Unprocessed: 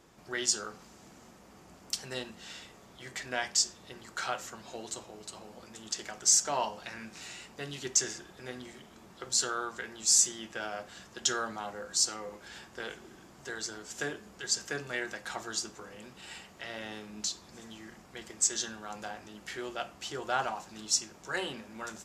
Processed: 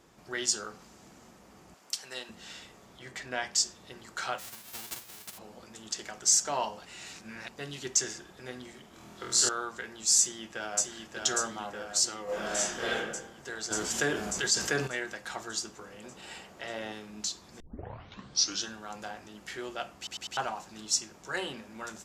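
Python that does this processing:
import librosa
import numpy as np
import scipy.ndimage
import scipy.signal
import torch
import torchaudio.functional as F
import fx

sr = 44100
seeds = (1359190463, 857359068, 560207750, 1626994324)

y = fx.highpass(x, sr, hz=760.0, slope=6, at=(1.74, 2.29))
y = fx.high_shelf(y, sr, hz=4600.0, db=-5.5, at=(2.99, 3.53))
y = fx.envelope_flatten(y, sr, power=0.1, at=(4.38, 5.37), fade=0.02)
y = fx.room_flutter(y, sr, wall_m=4.2, rt60_s=0.84, at=(8.91, 9.49))
y = fx.echo_throw(y, sr, start_s=10.18, length_s=0.71, ms=590, feedback_pct=70, wet_db=-3.5)
y = fx.reverb_throw(y, sr, start_s=12.24, length_s=0.72, rt60_s=0.97, drr_db=-10.0)
y = fx.env_flatten(y, sr, amount_pct=50, at=(13.7, 14.86), fade=0.02)
y = fx.peak_eq(y, sr, hz=540.0, db=5.5, octaves=1.9, at=(16.04, 16.92))
y = fx.edit(y, sr, fx.reverse_span(start_s=6.85, length_s=0.64),
    fx.tape_start(start_s=17.6, length_s=1.09),
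    fx.stutter_over(start_s=19.97, slice_s=0.1, count=4), tone=tone)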